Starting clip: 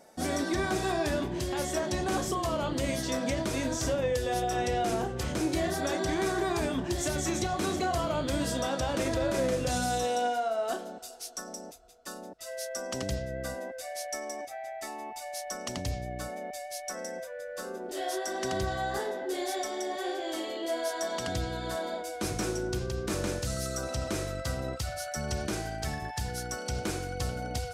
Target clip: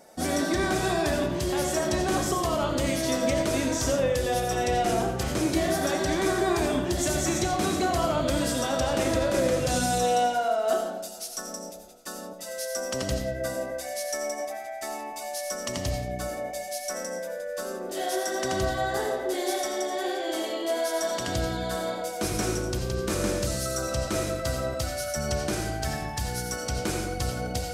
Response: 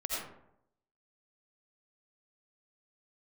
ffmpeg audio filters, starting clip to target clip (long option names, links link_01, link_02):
-filter_complex "[0:a]asplit=2[link_01][link_02];[1:a]atrim=start_sample=2205,highshelf=frequency=7200:gain=8[link_03];[link_02][link_03]afir=irnorm=-1:irlink=0,volume=-5.5dB[link_04];[link_01][link_04]amix=inputs=2:normalize=0"